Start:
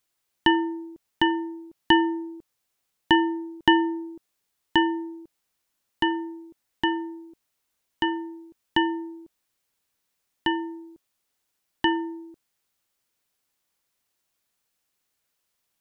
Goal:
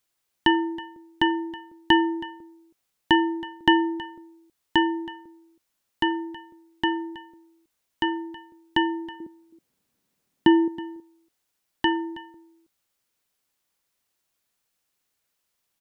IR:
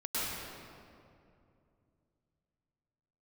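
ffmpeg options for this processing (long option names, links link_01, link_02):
-filter_complex "[0:a]asettb=1/sr,asplit=3[link_01][link_02][link_03];[link_01]atrim=end=9.204[link_04];[link_02]atrim=start=9.2:end=10.68,asetpts=PTS-STARTPTS,afade=type=in:duration=0.004:curve=qsin,afade=type=out:start_time=1.476:duration=0.004:curve=qsin,equalizer=frequency=210:width_type=o:width=2.3:gain=14.5[link_05];[link_03]atrim=start=10.676[link_06];[link_04][link_05]acrossfade=duration=0.004:curve1=hsin:curve2=qsin[link_07];[link_07][link_06]acrossfade=duration=0.004:curve1=qsin:curve2=hsin,aecho=1:1:322:0.126"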